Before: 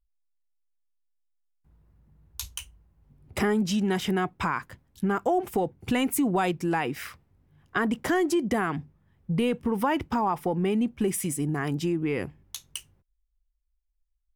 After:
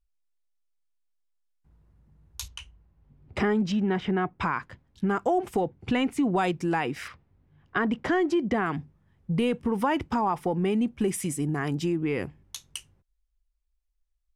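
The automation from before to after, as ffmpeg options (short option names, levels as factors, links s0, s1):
-af "asetnsamples=n=441:p=0,asendcmd='2.48 lowpass f 4100;3.72 lowpass f 2300;4.39 lowpass f 4900;5.08 lowpass f 8800;5.61 lowpass f 4500;6.32 lowpass f 8600;7.08 lowpass f 3900;8.66 lowpass f 10000',lowpass=10000"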